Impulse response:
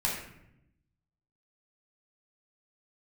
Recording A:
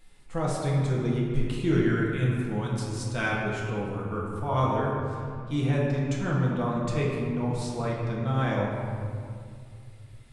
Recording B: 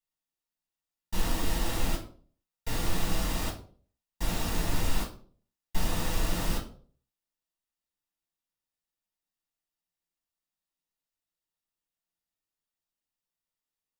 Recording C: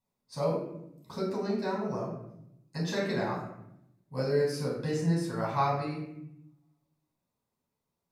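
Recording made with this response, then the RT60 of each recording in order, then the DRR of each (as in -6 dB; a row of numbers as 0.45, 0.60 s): C; 2.3, 0.50, 0.80 s; -5.0, -2.5, -5.5 dB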